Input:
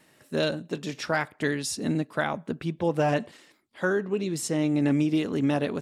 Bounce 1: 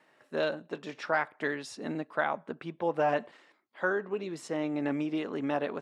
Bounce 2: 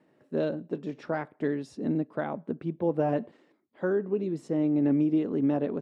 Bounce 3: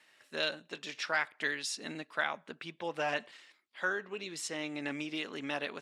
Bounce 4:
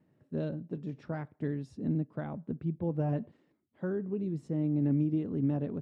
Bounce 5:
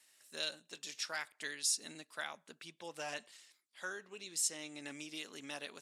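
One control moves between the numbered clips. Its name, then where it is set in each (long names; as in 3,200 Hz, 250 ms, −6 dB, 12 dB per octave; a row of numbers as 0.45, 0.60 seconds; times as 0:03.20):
resonant band-pass, frequency: 1,000, 340, 2,600, 110, 7,800 Hertz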